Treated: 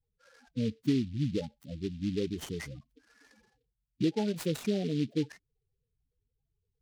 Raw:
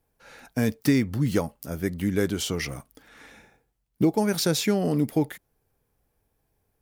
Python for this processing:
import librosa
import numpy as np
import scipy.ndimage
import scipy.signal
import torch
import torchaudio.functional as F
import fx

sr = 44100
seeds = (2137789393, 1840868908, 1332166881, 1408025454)

y = fx.spec_topn(x, sr, count=8)
y = fx.noise_mod_delay(y, sr, seeds[0], noise_hz=3200.0, depth_ms=0.061)
y = y * librosa.db_to_amplitude(-6.5)